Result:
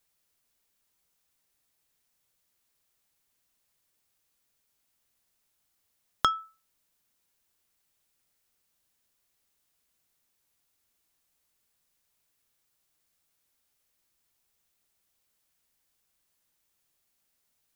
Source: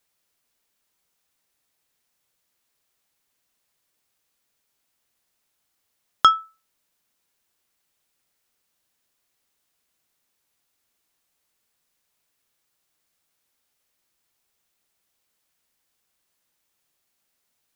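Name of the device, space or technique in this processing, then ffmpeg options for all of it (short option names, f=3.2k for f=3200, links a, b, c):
ASMR close-microphone chain: -af "lowshelf=f=140:g=7,acompressor=threshold=-17dB:ratio=6,highshelf=f=6.2k:g=4,volume=-4dB"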